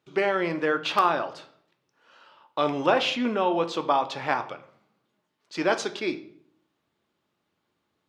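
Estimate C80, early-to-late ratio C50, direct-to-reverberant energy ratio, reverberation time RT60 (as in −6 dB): 18.0 dB, 14.0 dB, 8.0 dB, 0.55 s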